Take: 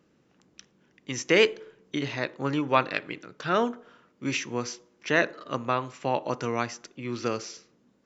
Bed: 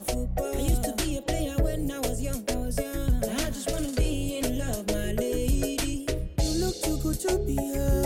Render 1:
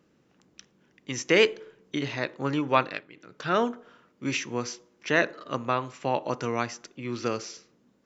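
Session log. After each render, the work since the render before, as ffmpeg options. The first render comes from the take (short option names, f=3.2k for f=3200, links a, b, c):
-filter_complex "[0:a]asplit=3[a][b][c];[a]atrim=end=3.08,asetpts=PTS-STARTPTS,afade=t=out:st=2.8:d=0.28:silence=0.188365[d];[b]atrim=start=3.08:end=3.12,asetpts=PTS-STARTPTS,volume=-14.5dB[e];[c]atrim=start=3.12,asetpts=PTS-STARTPTS,afade=t=in:d=0.28:silence=0.188365[f];[d][e][f]concat=n=3:v=0:a=1"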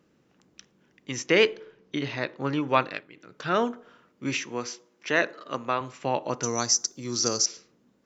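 -filter_complex "[0:a]asettb=1/sr,asplit=3[a][b][c];[a]atrim=end=1.264[d];[b]atrim=start=1.26:end=2.62,asetpts=PTS-STARTPTS,afade=t=in:d=0.004:c=qsin,afade=t=out:st=1.356:d=0.004:c=qsin,lowpass=f=6k:w=0.5412,lowpass=f=6k:w=1.3066[e];[c]atrim=start=2.616[f];[d][e]acrossfade=d=0.004:c1=hsin:c2=qsin[g];[g][f]acrossfade=d=0.004:c1=qsin:c2=hsin,asettb=1/sr,asplit=3[h][i][j];[h]atrim=end=4.454[k];[i]atrim=start=4.45:end=5.81,asetpts=PTS-STARTPTS,afade=t=in:d=0.004:c=qsin,afade=t=out:st=1.356:d=0.004:c=qsin,highpass=f=250:p=1[l];[j]atrim=start=5.806[m];[k][l]acrossfade=d=0.004:c1=hsin:c2=qsin[n];[n][m]acrossfade=d=0.004:c1=qsin:c2=hsin,asettb=1/sr,asplit=3[o][p][q];[o]atrim=end=6.434[r];[p]atrim=start=6.43:end=7.46,asetpts=PTS-STARTPTS,afade=t=in:d=0.004:c=qsin,afade=t=out:st=1.026:d=0.004:c=qsin,highshelf=f=3.9k:t=q:w=3:g=13.5[s];[q]atrim=start=7.456[t];[r][s]acrossfade=d=0.004:c1=hsin:c2=qsin[u];[u][t]acrossfade=d=0.004:c1=qsin:c2=hsin"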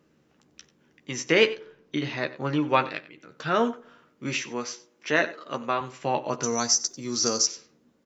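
-filter_complex "[0:a]asplit=2[a][b];[b]adelay=13,volume=-7dB[c];[a][c]amix=inputs=2:normalize=0,asplit=2[d][e];[e]adelay=93.29,volume=-17dB,highshelf=f=4k:g=-2.1[f];[d][f]amix=inputs=2:normalize=0"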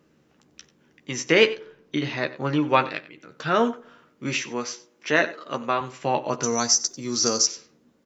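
-af "volume=2.5dB"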